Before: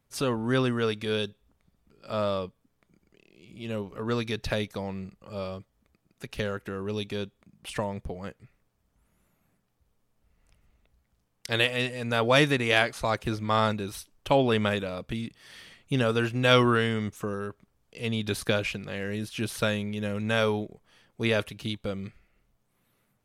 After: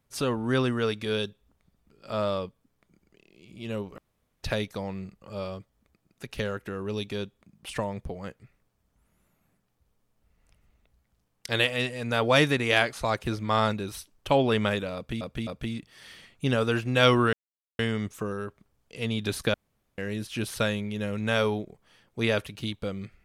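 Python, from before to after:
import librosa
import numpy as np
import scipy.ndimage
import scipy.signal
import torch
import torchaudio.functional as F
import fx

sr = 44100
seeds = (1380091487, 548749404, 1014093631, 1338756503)

y = fx.edit(x, sr, fx.room_tone_fill(start_s=3.98, length_s=0.45),
    fx.repeat(start_s=14.95, length_s=0.26, count=3),
    fx.insert_silence(at_s=16.81, length_s=0.46),
    fx.room_tone_fill(start_s=18.56, length_s=0.44), tone=tone)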